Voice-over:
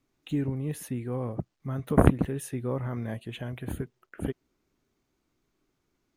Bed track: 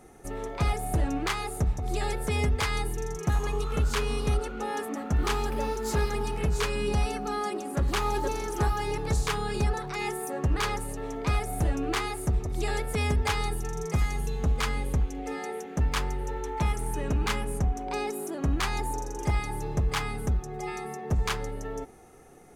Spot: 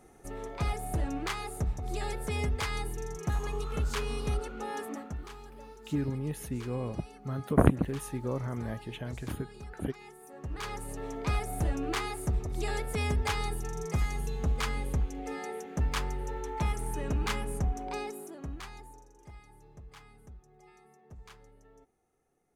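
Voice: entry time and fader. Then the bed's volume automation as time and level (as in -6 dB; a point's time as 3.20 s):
5.60 s, -2.5 dB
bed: 4.96 s -5 dB
5.29 s -19 dB
10.16 s -19 dB
10.96 s -3.5 dB
17.86 s -3.5 dB
19.15 s -23.5 dB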